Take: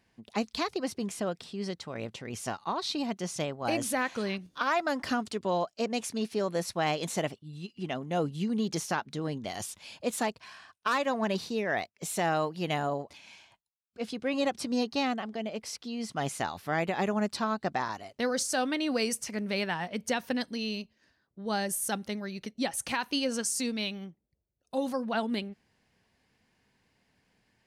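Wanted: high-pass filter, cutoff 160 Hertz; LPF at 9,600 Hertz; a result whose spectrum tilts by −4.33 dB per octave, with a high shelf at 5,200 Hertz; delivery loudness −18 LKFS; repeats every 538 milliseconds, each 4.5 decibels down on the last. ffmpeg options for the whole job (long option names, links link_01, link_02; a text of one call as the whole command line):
ffmpeg -i in.wav -af "highpass=160,lowpass=9600,highshelf=frequency=5200:gain=-7.5,aecho=1:1:538|1076|1614|2152|2690|3228|3766|4304|4842:0.596|0.357|0.214|0.129|0.0772|0.0463|0.0278|0.0167|0.01,volume=13.5dB" out.wav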